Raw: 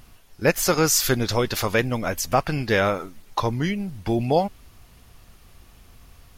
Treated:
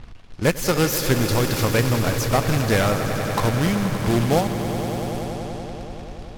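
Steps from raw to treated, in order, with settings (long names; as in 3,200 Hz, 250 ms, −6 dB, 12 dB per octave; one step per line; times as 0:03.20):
phase distortion by the signal itself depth 0.08 ms
low-shelf EQ 280 Hz +8 dB
in parallel at +1.5 dB: downward compressor 6 to 1, threshold −28 dBFS, peak gain reduction 16.5 dB
on the sum: log-companded quantiser 4 bits
on a send: echo that builds up and dies away 95 ms, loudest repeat 5, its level −12.5 dB
on the sum: low-pass that shuts in the quiet parts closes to 2,800 Hz, open at −17 dBFS
level −4.5 dB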